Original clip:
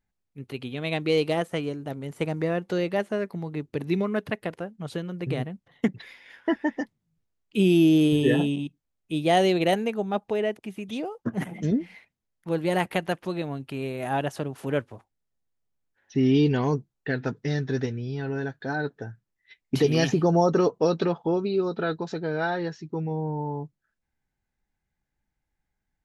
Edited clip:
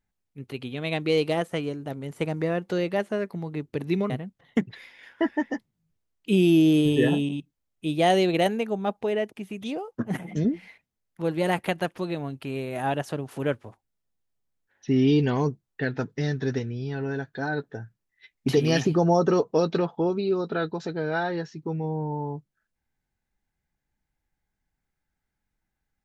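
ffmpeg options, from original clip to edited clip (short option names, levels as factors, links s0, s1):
-filter_complex "[0:a]asplit=2[s0][s1];[s0]atrim=end=4.102[s2];[s1]atrim=start=5.368[s3];[s2][s3]acrossfade=d=0.004:c1=hsin:c2=hsin"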